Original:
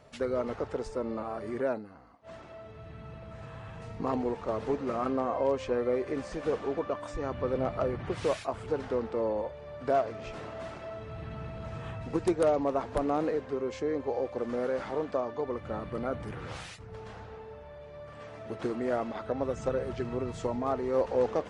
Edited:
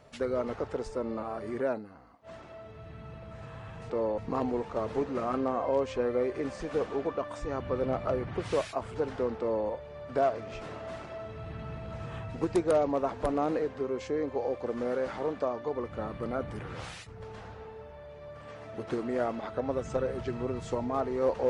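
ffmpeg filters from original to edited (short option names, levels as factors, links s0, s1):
-filter_complex "[0:a]asplit=3[s0][s1][s2];[s0]atrim=end=3.902[s3];[s1]atrim=start=9.108:end=9.392[s4];[s2]atrim=start=3.898[s5];[s3][s4]acrossfade=d=0.004:c1=hsin:c2=hsin[s6];[s6][s5]acrossfade=d=0.004:c1=hsin:c2=hsin"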